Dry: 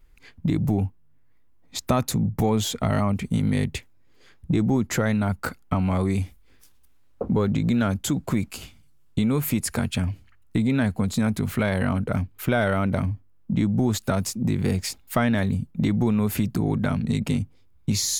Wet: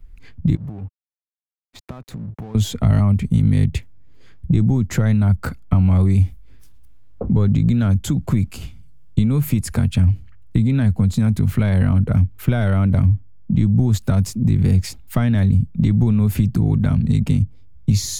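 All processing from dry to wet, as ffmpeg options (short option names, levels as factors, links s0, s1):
-filter_complex "[0:a]asettb=1/sr,asplit=3[s0][s1][s2];[s0]atrim=end=0.554[s3];[s1]atrim=start=0.55:end=2.55,asetpts=PTS-STARTPTS,afade=t=in:d=0.004:c=qsin,afade=t=out:st=1.996:d=0.004:c=qsin,bass=f=250:g=-7,treble=f=4000:g=-13,acompressor=threshold=0.02:ratio=6:attack=3.2:release=140:knee=1:detection=peak,aeval=exprs='sgn(val(0))*max(abs(val(0))-0.00398,0)':c=same[s4];[s2]atrim=start=2.546[s5];[s3][s4]acrossfade=d=0.004:c1=hsin:c2=qsin[s6];[s6][s5]acrossfade=d=0.004:c1=qsin:c2=hsin,bass=f=250:g=8,treble=f=4000:g=-2,acrossover=split=120|3000[s7][s8][s9];[s8]acompressor=threshold=0.0708:ratio=2[s10];[s7][s10][s9]amix=inputs=3:normalize=0,lowshelf=f=150:g=7"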